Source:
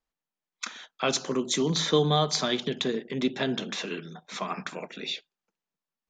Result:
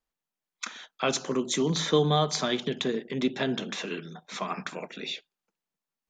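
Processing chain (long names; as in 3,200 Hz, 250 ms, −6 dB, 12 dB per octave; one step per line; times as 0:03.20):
dynamic equaliser 4,500 Hz, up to −4 dB, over −40 dBFS, Q 1.8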